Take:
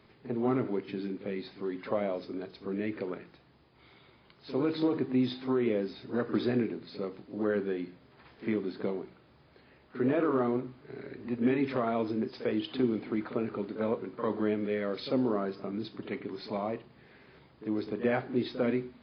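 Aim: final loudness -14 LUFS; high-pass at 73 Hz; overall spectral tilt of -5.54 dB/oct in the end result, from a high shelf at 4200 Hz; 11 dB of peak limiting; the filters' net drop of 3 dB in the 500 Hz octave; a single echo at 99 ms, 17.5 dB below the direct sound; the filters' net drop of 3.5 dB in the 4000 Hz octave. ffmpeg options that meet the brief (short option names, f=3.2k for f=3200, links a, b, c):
-af "highpass=73,equalizer=f=500:t=o:g=-4,equalizer=f=4k:t=o:g=-7.5,highshelf=f=4.2k:g=6.5,alimiter=level_in=5dB:limit=-24dB:level=0:latency=1,volume=-5dB,aecho=1:1:99:0.133,volume=25.5dB"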